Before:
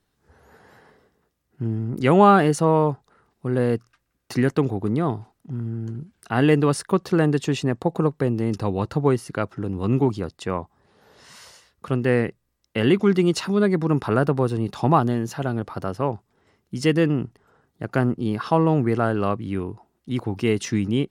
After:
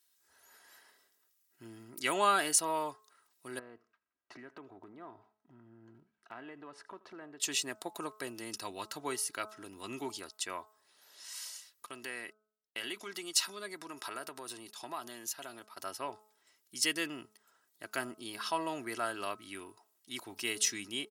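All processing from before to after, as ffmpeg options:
ffmpeg -i in.wav -filter_complex "[0:a]asettb=1/sr,asplit=3[link_01][link_02][link_03];[link_01]atrim=end=3.594[link_04];[link_02]atrim=start=3.59:end=7.4,asetpts=PTS-STARTPTS,afade=type=in:duration=0.004:curve=qsin,afade=type=out:start_time=3.806:duration=0.004:curve=qsin,lowpass=1300,acompressor=threshold=-27dB:ratio=4:attack=3.2:release=140:knee=1:detection=peak,aecho=1:1:80|160:0.0891|0.0223,atrim=end_sample=168021[link_05];[link_03]atrim=start=7.396[link_06];[link_04][link_05]acrossfade=duration=0.004:curve1=hsin:curve2=qsin[link_07];[link_07][link_06]acrossfade=duration=0.004:curve1=qsin:curve2=hsin,asettb=1/sr,asplit=3[link_08][link_09][link_10];[link_08]atrim=end=11.864[link_11];[link_09]atrim=start=11.86:end=15.8,asetpts=PTS-STARTPTS,afade=type=in:duration=0.004:curve=qsin,afade=type=out:start_time=3.936:duration=0.004:curve=qsin,agate=range=-33dB:threshold=-31dB:ratio=3:release=100:detection=peak,lowshelf=frequency=140:gain=-7.5,acompressor=threshold=-25dB:ratio=2.5:attack=3.2:release=140:knee=1:detection=peak[link_12];[link_10]atrim=start=15.796[link_13];[link_11][link_12]acrossfade=duration=0.004:curve1=hsin:curve2=qsin[link_14];[link_14][link_13]acrossfade=duration=0.004:curve1=qsin:curve2=hsin,aderivative,aecho=1:1:3.1:0.46,bandreject=frequency=214.5:width_type=h:width=4,bandreject=frequency=429:width_type=h:width=4,bandreject=frequency=643.5:width_type=h:width=4,bandreject=frequency=858:width_type=h:width=4,bandreject=frequency=1072.5:width_type=h:width=4,bandreject=frequency=1287:width_type=h:width=4,bandreject=frequency=1501.5:width_type=h:width=4,volume=5dB" out.wav

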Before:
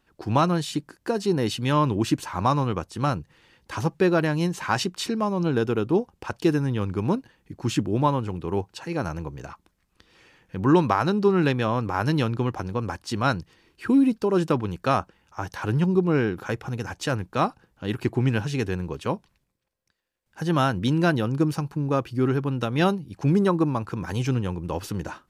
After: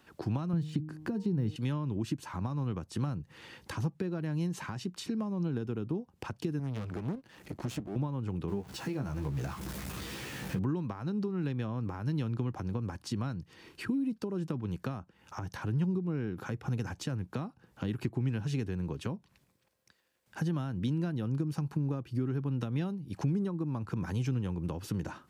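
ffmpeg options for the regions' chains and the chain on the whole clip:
ffmpeg -i in.wav -filter_complex "[0:a]asettb=1/sr,asplit=3[link_01][link_02][link_03];[link_01]atrim=end=0.534[link_04];[link_02]atrim=start=0.53:end=1.56,asetpts=PTS-STARTPTS,afade=type=in:duration=0.004:curve=qsin,afade=type=out:start_time=1.026:duration=0.004:curve=qsin,deesser=0.95,bass=frequency=250:gain=11,treble=frequency=4000:gain=-5,bandreject=frequency=154.3:width_type=h:width=4,bandreject=frequency=308.6:width_type=h:width=4,bandreject=frequency=462.9:width_type=h:width=4,bandreject=frequency=617.2:width_type=h:width=4,bandreject=frequency=771.5:width_type=h:width=4,bandreject=frequency=925.8:width_type=h:width=4,bandreject=frequency=1080.1:width_type=h:width=4[link_05];[link_03]atrim=start=1.556[link_06];[link_04][link_05]acrossfade=duration=0.004:curve1=hsin:curve2=qsin[link_07];[link_07][link_06]acrossfade=duration=0.004:curve1=qsin:curve2=hsin,asettb=1/sr,asplit=3[link_08][link_09][link_10];[link_08]atrim=end=6.594[link_11];[link_09]atrim=start=6.59:end=7.96,asetpts=PTS-STARTPTS,afade=type=in:duration=0.004:curve=qsin,afade=type=out:start_time=1.366:duration=0.004:curve=qsin,equalizer=frequency=63:width=4.4:gain=-4,acompressor=mode=upward:threshold=-41dB:ratio=2.5:attack=3.2:release=140:knee=2.83:detection=peak,aeval=exprs='max(val(0),0)':channel_layout=same[link_12];[link_10]atrim=start=7.956[link_13];[link_11][link_12]acrossfade=duration=0.004:curve1=hsin:curve2=qsin[link_14];[link_14][link_13]acrossfade=duration=0.004:curve1=qsin:curve2=hsin,asettb=1/sr,asplit=3[link_15][link_16][link_17];[link_15]atrim=end=8.484[link_18];[link_16]atrim=start=8.48:end=10.59,asetpts=PTS-STARTPTS,afade=type=in:duration=0.004:curve=qsin,afade=type=out:start_time=2.106:duration=0.004:curve=qsin,aeval=exprs='val(0)+0.5*0.0158*sgn(val(0))':channel_layout=same,asplit=2[link_19][link_20];[link_20]adelay=15,volume=-5dB[link_21];[link_19][link_21]amix=inputs=2:normalize=0,atrim=end_sample=93051[link_22];[link_17]atrim=start=10.586[link_23];[link_18][link_22]acrossfade=duration=0.004:curve1=hsin:curve2=qsin[link_24];[link_24][link_23]acrossfade=duration=0.004:curve1=qsin:curve2=hsin,acompressor=threshold=-36dB:ratio=4,highpass=85,acrossover=split=270[link_25][link_26];[link_26]acompressor=threshold=-49dB:ratio=5[link_27];[link_25][link_27]amix=inputs=2:normalize=0,volume=7dB" out.wav

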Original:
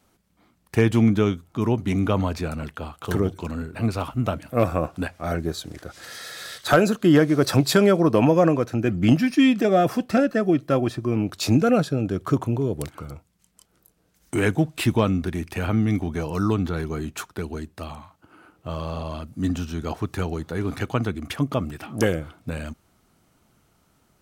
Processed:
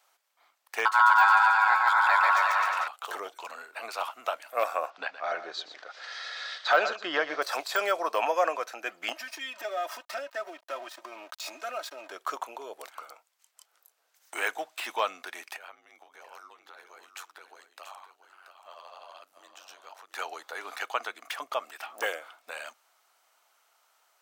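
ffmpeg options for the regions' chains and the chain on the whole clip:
ffmpeg -i in.wav -filter_complex "[0:a]asettb=1/sr,asplit=3[link_01][link_02][link_03];[link_01]atrim=end=0.854[link_04];[link_02]atrim=start=0.85:end=2.88,asetpts=PTS-STARTPTS,afade=type=in:duration=0.004:curve=qsin,afade=type=out:start_time=2.026:duration=0.004:curve=qsin,aeval=exprs='val(0)*sin(2*PI*1200*n/s)':channel_layout=same,aecho=1:1:140|259|360.2|446.1|519.2|581.3:0.794|0.631|0.501|0.398|0.316|0.251,atrim=end_sample=89523[link_05];[link_03]atrim=start=2.876[link_06];[link_04][link_05]acrossfade=duration=0.004:curve1=hsin:curve2=qsin[link_07];[link_07][link_06]acrossfade=duration=0.004:curve1=qsin:curve2=hsin,asettb=1/sr,asplit=3[link_08][link_09][link_10];[link_08]atrim=end=4.904[link_11];[link_09]atrim=start=4.9:end=7.42,asetpts=PTS-STARTPTS,afade=type=in:duration=0.004:curve=qsin,afade=type=out:start_time=2.516:duration=0.004:curve=qsin,lowpass=frequency=5000:width=0.5412,lowpass=frequency=5000:width=1.3066,equalizer=frequency=110:width=0.71:gain=11.5,aecho=1:1:119:0.237,atrim=end_sample=111132[link_12];[link_10]atrim=start=7.416[link_13];[link_11][link_12]acrossfade=duration=0.004:curve1=hsin:curve2=qsin[link_14];[link_14][link_13]acrossfade=duration=0.004:curve1=qsin:curve2=hsin,asettb=1/sr,asplit=3[link_15][link_16][link_17];[link_15]atrim=end=9.124[link_18];[link_16]atrim=start=9.12:end=12.12,asetpts=PTS-STARTPTS,afade=type=in:duration=0.004:curve=qsin,afade=type=out:start_time=2.996:duration=0.004:curve=qsin,aeval=exprs='sgn(val(0))*max(abs(val(0))-0.00944,0)':channel_layout=same,aecho=1:1:3.2:0.78,atrim=end_sample=132300,acompressor=threshold=-26dB:ratio=3:attack=3.2:release=140:knee=1:detection=peak[link_19];[link_17]atrim=start=12.116[link_20];[link_18][link_19]acrossfade=duration=0.004:curve1=hsin:curve2=qsin[link_21];[link_21][link_20]acrossfade=duration=0.004:curve1=qsin:curve2=hsin,asettb=1/sr,asplit=3[link_22][link_23][link_24];[link_22]atrim=end=15.564[link_25];[link_23]atrim=start=15.56:end=20.15,asetpts=PTS-STARTPTS,afade=type=in:duration=0.004:curve=qsin,afade=type=out:start_time=4.586:duration=0.004:curve=qsin,acompressor=threshold=-33dB:ratio=12:attack=3.2:release=140:knee=1:detection=peak,aeval=exprs='val(0)*sin(2*PI*47*n/s)':channel_layout=same,aecho=1:1:682:0.316,atrim=end_sample=202419[link_26];[link_24]atrim=start=20.146[link_27];[link_25][link_26]acrossfade=duration=0.004:curve1=hsin:curve2=qsin[link_28];[link_28][link_27]acrossfade=duration=0.004:curve1=qsin:curve2=hsin,deesser=0.7,highpass=frequency=680:width=0.5412,highpass=frequency=680:width=1.3066,equalizer=frequency=10000:width=2.6:gain=-4" out.wav

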